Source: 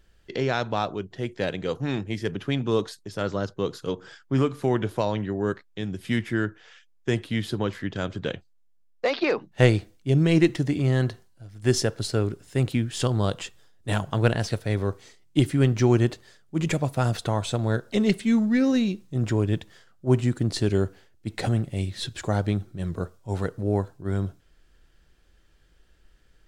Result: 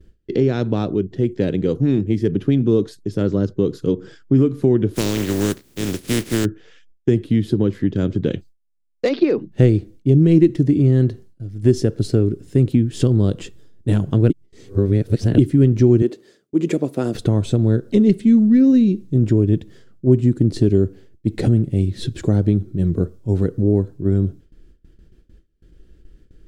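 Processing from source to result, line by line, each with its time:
4.93–6.44 spectral contrast lowered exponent 0.24
8.31–9.09 high shelf 2500 Hz +11.5 dB
14.3–15.38 reverse
16.02–17.15 Chebyshev high-pass 340 Hz
whole clip: gate with hold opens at -49 dBFS; resonant low shelf 530 Hz +13.5 dB, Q 1.5; compressor 2:1, threshold -14 dBFS; gain -1 dB

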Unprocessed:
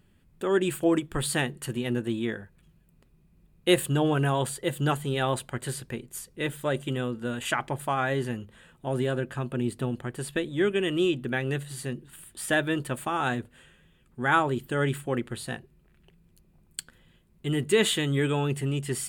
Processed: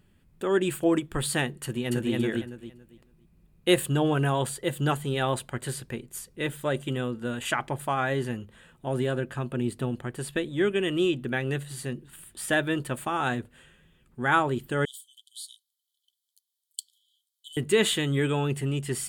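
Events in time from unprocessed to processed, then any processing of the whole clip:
1.63–2.13 echo throw 0.28 s, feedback 25%, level -0.5 dB
14.85–17.57 brick-wall FIR high-pass 3000 Hz

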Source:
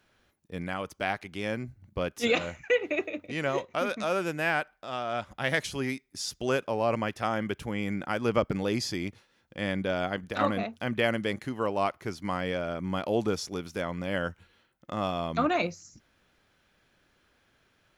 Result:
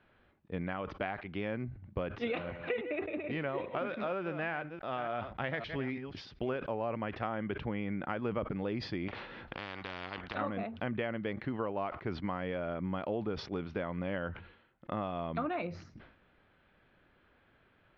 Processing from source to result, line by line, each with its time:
1.68–6.66 reverse delay 0.283 s, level -12 dB
9.08–10.35 spectral compressor 10:1
whole clip: compressor 6:1, threshold -34 dBFS; Bessel low-pass 2200 Hz, order 8; sustainer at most 91 dB/s; gain +2 dB

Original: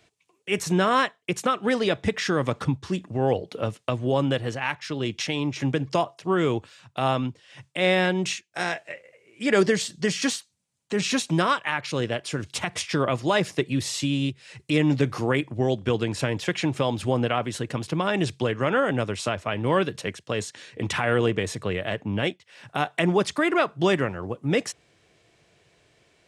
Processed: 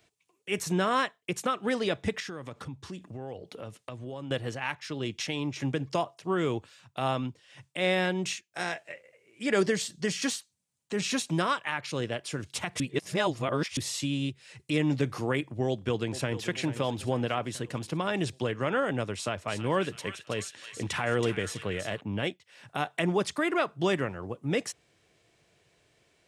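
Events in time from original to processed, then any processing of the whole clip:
2.2–4.31 compressor 3:1, threshold -33 dBFS
12.8–13.77 reverse
15.68–16.46 echo throw 0.44 s, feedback 60%, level -13 dB
19.15–22.01 thin delay 0.325 s, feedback 40%, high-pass 1800 Hz, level -6 dB
whole clip: high shelf 11000 Hz +8.5 dB; gain -5.5 dB

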